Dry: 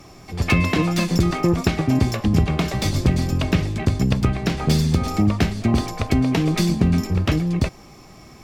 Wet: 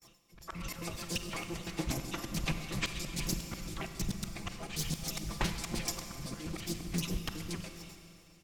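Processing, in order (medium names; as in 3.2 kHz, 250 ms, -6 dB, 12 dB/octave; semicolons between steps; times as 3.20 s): pitch shift switched off and on -11.5 st, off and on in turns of 68 ms; pre-emphasis filter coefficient 0.8; gate with hold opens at -43 dBFS; harmonic-percussive split harmonic -17 dB; comb 5.9 ms, depth 60%; in parallel at -3 dB: compression, threshold -40 dBFS, peak gain reduction 14 dB; on the sum: slow attack 204 ms; level rider gain up to 8.5 dB; Schroeder reverb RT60 2.8 s, combs from 32 ms, DRR 6.5 dB; loudspeaker Doppler distortion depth 0.38 ms; trim -6.5 dB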